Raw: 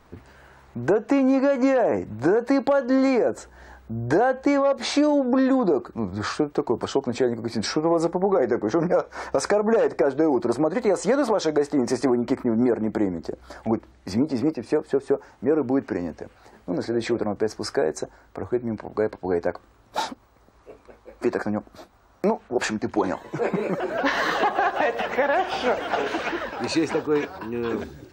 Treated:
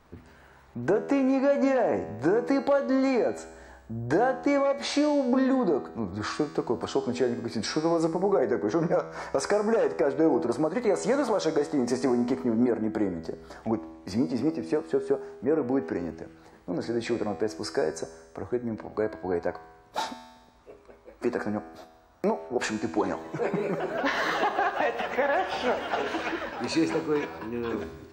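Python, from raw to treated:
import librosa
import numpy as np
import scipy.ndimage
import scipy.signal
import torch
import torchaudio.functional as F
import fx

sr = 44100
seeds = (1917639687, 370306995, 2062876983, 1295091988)

y = fx.comb_fb(x, sr, f0_hz=81.0, decay_s=1.2, harmonics='all', damping=0.0, mix_pct=70)
y = F.gain(torch.from_numpy(y), 5.0).numpy()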